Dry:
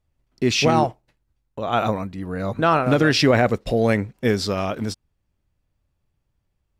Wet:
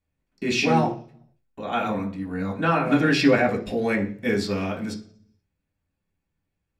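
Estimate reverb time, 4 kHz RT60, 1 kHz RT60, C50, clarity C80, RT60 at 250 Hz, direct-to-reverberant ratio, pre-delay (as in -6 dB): 0.45 s, 0.55 s, 0.40 s, 12.0 dB, 16.5 dB, 0.70 s, -2.5 dB, 3 ms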